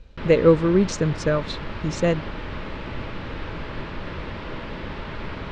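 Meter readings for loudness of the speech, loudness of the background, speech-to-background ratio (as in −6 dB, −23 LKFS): −21.0 LKFS, −34.0 LKFS, 13.0 dB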